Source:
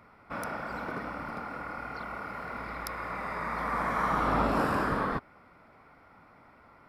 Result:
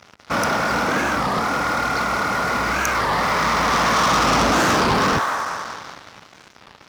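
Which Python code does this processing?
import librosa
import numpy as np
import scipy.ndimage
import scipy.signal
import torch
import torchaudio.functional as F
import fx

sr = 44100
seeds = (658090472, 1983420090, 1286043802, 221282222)

y = fx.echo_wet_bandpass(x, sr, ms=191, feedback_pct=58, hz=1400.0, wet_db=-8.0)
y = fx.leveller(y, sr, passes=5)
y = scipy.signal.sosfilt(scipy.signal.butter(2, 58.0, 'highpass', fs=sr, output='sos'), y)
y = fx.peak_eq(y, sr, hz=5700.0, db=9.0, octaves=0.6)
y = fx.record_warp(y, sr, rpm=33.33, depth_cents=250.0)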